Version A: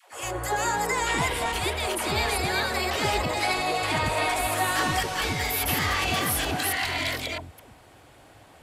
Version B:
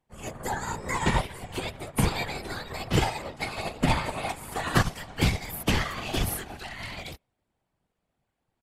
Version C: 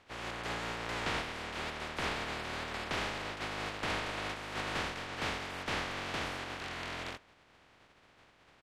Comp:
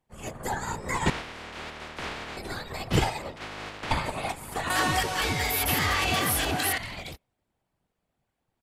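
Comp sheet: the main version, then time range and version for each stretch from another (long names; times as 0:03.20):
B
0:01.10–0:02.37: punch in from C
0:03.36–0:03.91: punch in from C
0:04.70–0:06.78: punch in from A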